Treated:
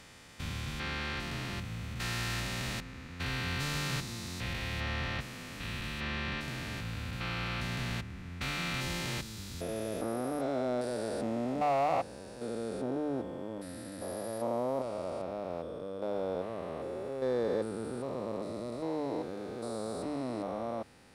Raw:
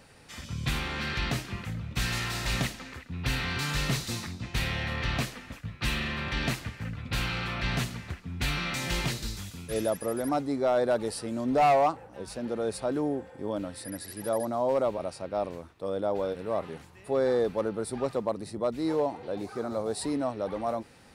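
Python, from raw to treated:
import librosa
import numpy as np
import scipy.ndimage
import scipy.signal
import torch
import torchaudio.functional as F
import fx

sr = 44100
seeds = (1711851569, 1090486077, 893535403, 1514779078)

y = fx.spec_steps(x, sr, hold_ms=400)
y = fx.hum_notches(y, sr, base_hz=50, count=3)
y = y * librosa.db_to_amplitude(-2.0)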